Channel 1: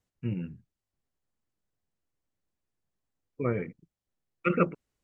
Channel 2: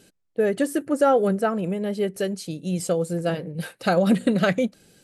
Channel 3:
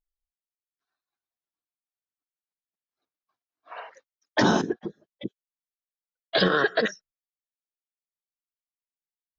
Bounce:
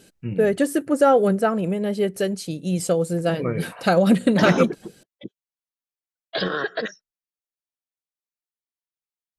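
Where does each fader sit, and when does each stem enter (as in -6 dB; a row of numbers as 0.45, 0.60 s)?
+2.5, +2.5, -3.5 dB; 0.00, 0.00, 0.00 s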